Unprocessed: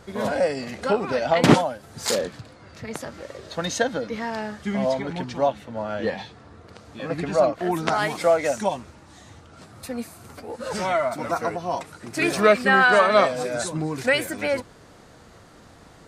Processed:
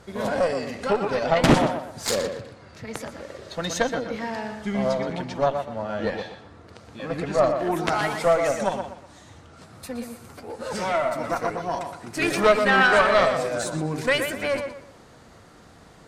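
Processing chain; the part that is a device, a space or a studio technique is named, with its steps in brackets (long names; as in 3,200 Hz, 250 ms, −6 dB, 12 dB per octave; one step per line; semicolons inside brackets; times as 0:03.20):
rockabilly slapback (tube saturation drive 11 dB, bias 0.75; tape delay 121 ms, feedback 32%, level −6 dB, low-pass 3,300 Hz)
level +3 dB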